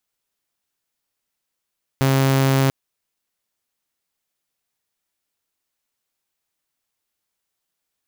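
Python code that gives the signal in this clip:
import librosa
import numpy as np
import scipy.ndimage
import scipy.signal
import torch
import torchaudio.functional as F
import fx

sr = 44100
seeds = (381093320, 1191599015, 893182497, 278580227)

y = 10.0 ** (-12.0 / 20.0) * (2.0 * np.mod(135.0 * (np.arange(round(0.69 * sr)) / sr), 1.0) - 1.0)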